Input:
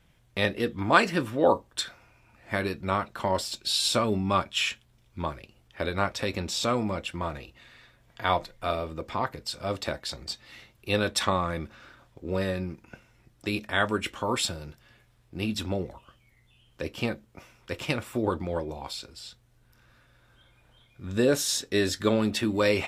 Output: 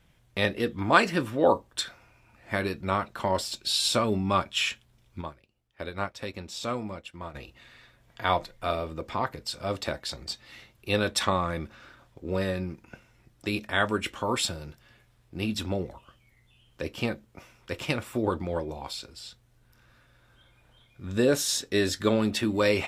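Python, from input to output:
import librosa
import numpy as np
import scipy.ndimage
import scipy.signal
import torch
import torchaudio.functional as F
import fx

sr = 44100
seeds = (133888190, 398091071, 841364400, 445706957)

y = fx.upward_expand(x, sr, threshold_db=-48.0, expansion=1.5, at=(5.2, 7.34), fade=0.02)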